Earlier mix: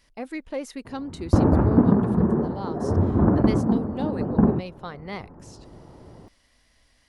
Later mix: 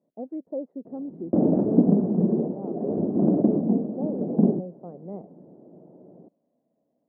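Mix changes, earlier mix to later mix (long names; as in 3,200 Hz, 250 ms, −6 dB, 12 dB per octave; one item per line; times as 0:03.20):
background: remove low-pass filter 1,200 Hz 24 dB per octave
master: add Chebyshev band-pass filter 170–660 Hz, order 3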